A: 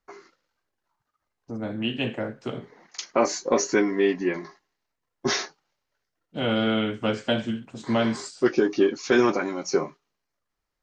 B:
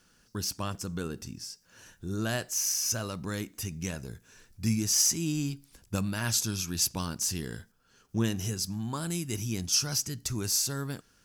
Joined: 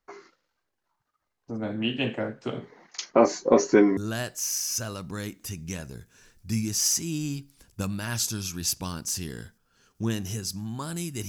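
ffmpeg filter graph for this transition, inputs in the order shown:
-filter_complex "[0:a]asettb=1/sr,asplit=3[s0][s1][s2];[s0]atrim=end=3.094[s3];[s1]atrim=start=3.09:end=3.97,asetpts=PTS-STARTPTS,afade=t=in:d=0.004:c=qsin,afade=t=out:st=0.876:d=0.004:c=qsin,tiltshelf=f=1100:g=5[s4];[s2]atrim=start=3.966[s5];[s3][s4]acrossfade=d=0.004:c1=hsin:c2=qsin[s6];[s6][s5]acrossfade=d=0.004:c1=qsin:c2=hsin,apad=whole_dur=11.28,atrim=end=11.28,atrim=end=3.972[s7];[1:a]atrim=start=2.108:end=9.42[s8];[s7][s8]acrossfade=d=0.004:c1=hsin:c2=hsin"

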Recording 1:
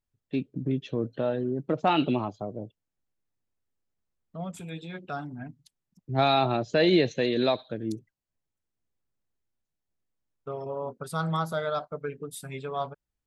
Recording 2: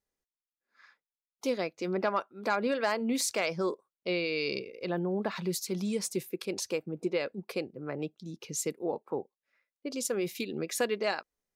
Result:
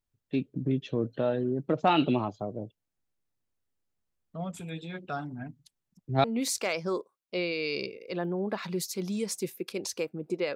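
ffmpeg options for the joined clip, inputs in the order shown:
-filter_complex "[0:a]apad=whole_dur=10.55,atrim=end=10.55,atrim=end=6.242[s0];[1:a]atrim=start=2.968:end=7.28[s1];[s0][s1]acrossfade=d=0.004:c1=hsin:c2=hsin"

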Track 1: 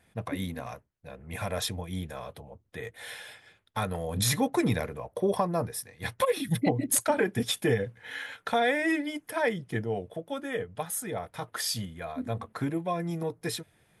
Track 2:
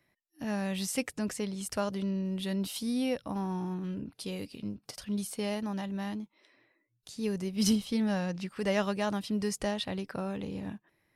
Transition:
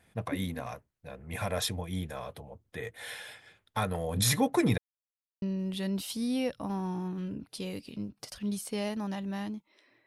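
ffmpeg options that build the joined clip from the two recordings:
-filter_complex "[0:a]apad=whole_dur=10.06,atrim=end=10.06,asplit=2[s0][s1];[s0]atrim=end=4.78,asetpts=PTS-STARTPTS,afade=t=out:st=4.776:d=0.004:c=hsin[s2];[s1]atrim=start=4.78:end=5.42,asetpts=PTS-STARTPTS,volume=0[s3];[1:a]atrim=start=2.08:end=6.72,asetpts=PTS-STARTPTS,afade=t=in:d=0.004:c=hsin[s4];[s2][s3][s4]concat=n=3:v=0:a=1"

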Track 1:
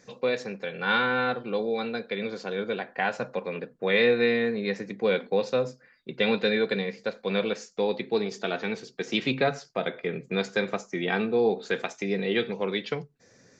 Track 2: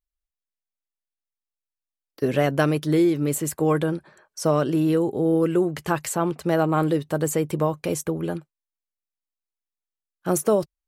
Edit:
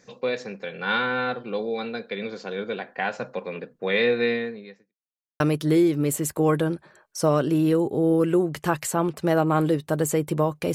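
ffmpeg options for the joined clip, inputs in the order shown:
-filter_complex "[0:a]apad=whole_dur=10.74,atrim=end=10.74,asplit=2[s0][s1];[s0]atrim=end=4.95,asetpts=PTS-STARTPTS,afade=t=out:st=4.32:d=0.63:c=qua[s2];[s1]atrim=start=4.95:end=5.4,asetpts=PTS-STARTPTS,volume=0[s3];[1:a]atrim=start=2.62:end=7.96,asetpts=PTS-STARTPTS,afade=t=in:d=0.004:c=hsin[s4];[s2][s3][s4]concat=n=3:v=0:a=1"

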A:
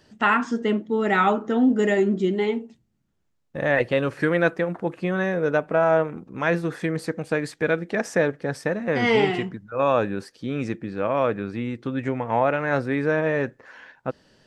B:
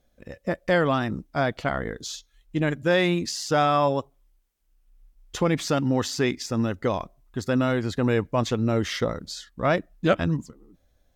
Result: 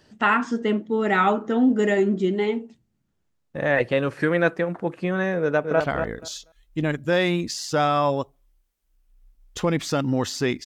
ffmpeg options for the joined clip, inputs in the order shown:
-filter_complex "[0:a]apad=whole_dur=10.65,atrim=end=10.65,atrim=end=5.802[s0];[1:a]atrim=start=1.578:end=6.43[s1];[s0][s1]acrossfade=d=0.004:c1=hsin:c2=hsin,asplit=2[s2][s3];[s3]afade=t=in:st=5.4:d=0.01,afade=t=out:st=5.8:d=0.01,aecho=0:1:240|480|720:0.501187|0.0751781|0.0112767[s4];[s2][s4]amix=inputs=2:normalize=0"

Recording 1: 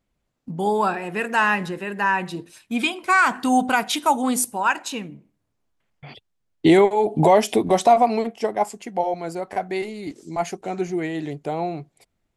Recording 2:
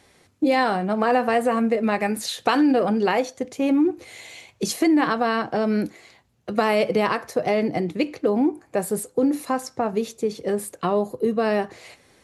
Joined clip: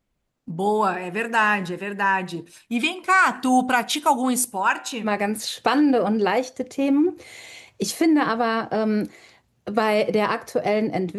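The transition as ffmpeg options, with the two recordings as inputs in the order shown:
-filter_complex "[0:a]asettb=1/sr,asplit=3[s0][s1][s2];[s0]atrim=end=4.614[s3];[s1]atrim=start=4.61:end=5.08,asetpts=PTS-STARTPTS,afade=t=in:d=0.004:c=qsin,afade=t=out:st=0.466:d=0.004:c=qsin,bandreject=f=127.6:t=h:w=4,bandreject=f=255.2:t=h:w=4,bandreject=f=382.8:t=h:w=4,bandreject=f=510.4:t=h:w=4,bandreject=f=638:t=h:w=4,bandreject=f=765.6:t=h:w=4,bandreject=f=893.2:t=h:w=4,bandreject=f=1020.8:t=h:w=4,bandreject=f=1148.4:t=h:w=4,bandreject=f=1276:t=h:w=4,bandreject=f=1403.6:t=h:w=4,bandreject=f=1531.2:t=h:w=4,bandreject=f=1658.8:t=h:w=4,bandreject=f=1786.4:t=h:w=4,bandreject=f=1914:t=h:w=4,bandreject=f=2041.6:t=h:w=4,bandreject=f=2169.2:t=h:w=4,bandreject=f=2296.8:t=h:w=4,bandreject=f=2424.4:t=h:w=4,bandreject=f=2552:t=h:w=4,bandreject=f=2679.6:t=h:w=4,bandreject=f=2807.2:t=h:w=4,bandreject=f=2934.8:t=h:w=4,bandreject=f=3062.4:t=h:w=4,bandreject=f=3190:t=h:w=4,bandreject=f=3317.6:t=h:w=4,bandreject=f=3445.2:t=h:w=4,bandreject=f=3572.8:t=h:w=4,bandreject=f=3700.4:t=h:w=4,bandreject=f=3828:t=h:w=4,bandreject=f=3955.6:t=h:w=4,bandreject=f=4083.2:t=h:w=4[s4];[s2]atrim=start=5.076[s5];[s3][s4]acrossfade=d=0.004:c1=hsin:c2=qsin[s6];[s6][s5]acrossfade=d=0.004:c1=qsin:c2=hsin,apad=whole_dur=11.18,atrim=end=11.18,atrim=end=5.08,asetpts=PTS-STARTPTS[s7];[1:a]atrim=start=1.83:end=7.99,asetpts=PTS-STARTPTS[s8];[s7][s8]acrossfade=d=0.06:c1=tri:c2=tri"

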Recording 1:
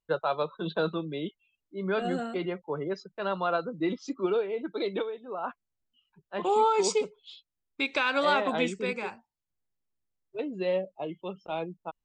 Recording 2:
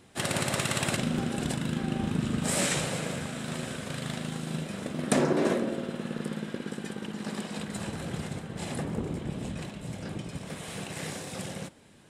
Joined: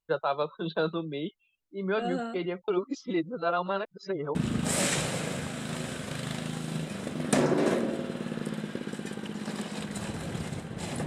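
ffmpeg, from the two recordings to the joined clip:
-filter_complex "[0:a]apad=whole_dur=11.06,atrim=end=11.06,asplit=2[s0][s1];[s0]atrim=end=2.682[s2];[s1]atrim=start=2.678:end=4.352,asetpts=PTS-STARTPTS,areverse[s3];[1:a]atrim=start=2.138:end=8.85[s4];[s2][s3]acrossfade=d=0.004:c1=hsin:c2=hsin[s5];[s5][s4]acrossfade=d=0.004:c1=hsin:c2=hsin"

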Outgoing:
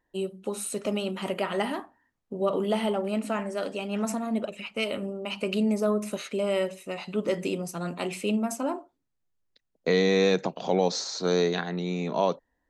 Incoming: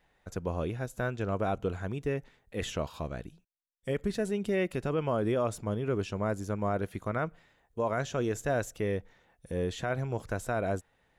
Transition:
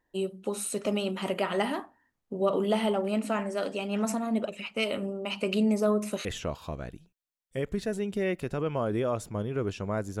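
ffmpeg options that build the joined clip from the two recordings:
-filter_complex "[0:a]apad=whole_dur=10.2,atrim=end=10.2,atrim=end=6.252[s0];[1:a]atrim=start=2.568:end=6.52[s1];[s0][s1]acrossfade=d=0.004:c1=hsin:c2=hsin"

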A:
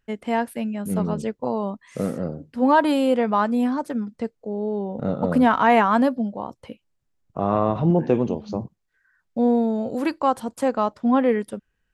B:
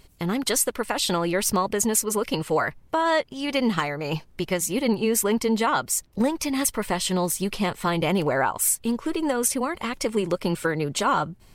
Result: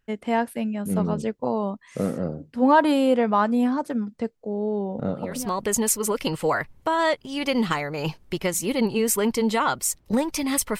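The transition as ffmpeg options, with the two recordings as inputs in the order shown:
-filter_complex "[0:a]apad=whole_dur=10.79,atrim=end=10.79,atrim=end=5.65,asetpts=PTS-STARTPTS[s0];[1:a]atrim=start=1.08:end=6.86,asetpts=PTS-STARTPTS[s1];[s0][s1]acrossfade=d=0.64:c1=qua:c2=qua"

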